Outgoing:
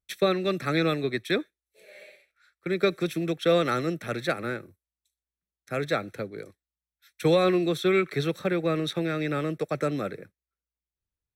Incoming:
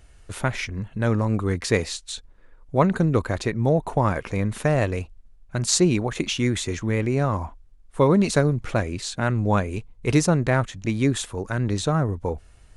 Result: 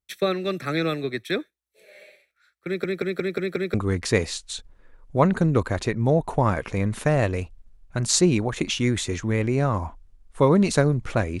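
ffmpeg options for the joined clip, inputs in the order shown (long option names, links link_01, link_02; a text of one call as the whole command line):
ffmpeg -i cue0.wav -i cue1.wav -filter_complex "[0:a]apad=whole_dur=11.4,atrim=end=11.4,asplit=6[link_01][link_02][link_03][link_04][link_05][link_06];[link_01]atrim=end=2.842[link_07];[link_02]atrim=start=2.658:end=2.842[link_08];[link_03]atrim=start=2.658:end=2.842[link_09];[link_04]atrim=start=2.658:end=2.842[link_10];[link_05]atrim=start=2.658:end=2.842[link_11];[link_06]atrim=start=2.658:end=2.842[link_12];[1:a]atrim=start=1.328:end=8.99[link_13];[link_07][link_08]acrossfade=duration=0.004:curve1=hsin:curve2=hsin[link_14];[link_14][link_09]acrossfade=duration=0.004:curve1=hsin:curve2=hsin[link_15];[link_15][link_10]acrossfade=duration=0.004:curve1=hsin:curve2=hsin[link_16];[link_16][link_11]acrossfade=duration=0.004:curve1=hsin:curve2=hsin[link_17];[link_17][link_12]acrossfade=duration=0.004:curve1=hsin:curve2=hsin[link_18];[link_18][link_13]acrossfade=duration=0.004:curve1=hsin:curve2=hsin" out.wav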